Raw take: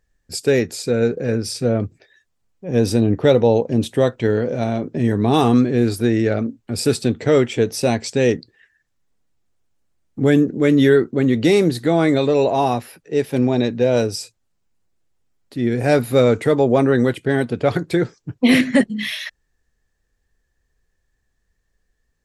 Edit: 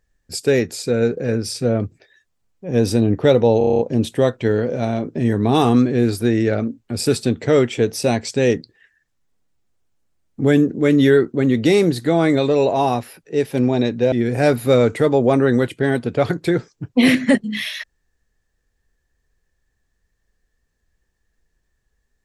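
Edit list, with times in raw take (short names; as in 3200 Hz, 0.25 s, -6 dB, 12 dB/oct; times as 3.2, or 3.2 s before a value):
3.58 stutter 0.03 s, 8 plays
13.91–15.58 cut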